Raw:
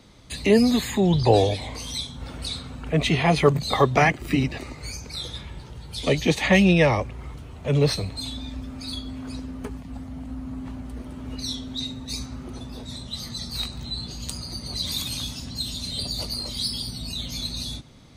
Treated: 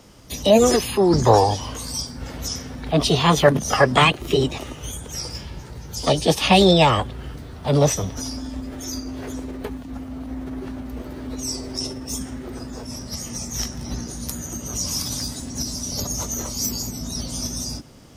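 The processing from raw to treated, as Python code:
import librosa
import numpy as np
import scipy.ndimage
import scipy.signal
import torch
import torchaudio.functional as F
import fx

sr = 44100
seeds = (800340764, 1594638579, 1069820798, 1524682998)

y = fx.formant_shift(x, sr, semitones=6)
y = y * 10.0 ** (3.0 / 20.0)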